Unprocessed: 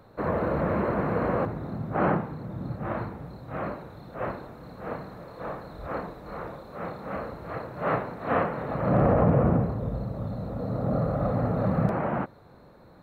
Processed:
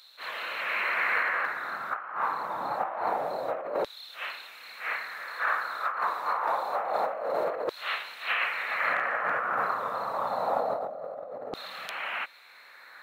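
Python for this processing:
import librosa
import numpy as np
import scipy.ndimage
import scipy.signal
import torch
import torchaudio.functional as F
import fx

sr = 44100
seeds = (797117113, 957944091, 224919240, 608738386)

y = fx.filter_lfo_highpass(x, sr, shape='saw_down', hz=0.26, low_hz=480.0, high_hz=3800.0, q=2.9)
y = fx.over_compress(y, sr, threshold_db=-37.0, ratio=-1.0)
y = fx.attack_slew(y, sr, db_per_s=260.0)
y = y * librosa.db_to_amplitude(6.5)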